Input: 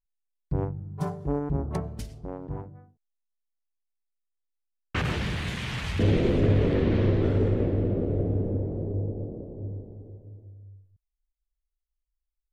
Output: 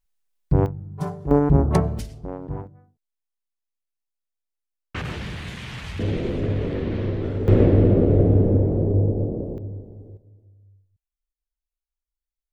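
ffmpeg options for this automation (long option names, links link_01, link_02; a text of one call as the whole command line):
ffmpeg -i in.wav -af "asetnsamples=nb_out_samples=441:pad=0,asendcmd='0.66 volume volume 2dB;1.31 volume volume 11.5dB;1.99 volume volume 4dB;2.67 volume volume -2.5dB;7.48 volume volume 10dB;9.58 volume volume 2dB;10.17 volume volume -6dB',volume=9.5dB" out.wav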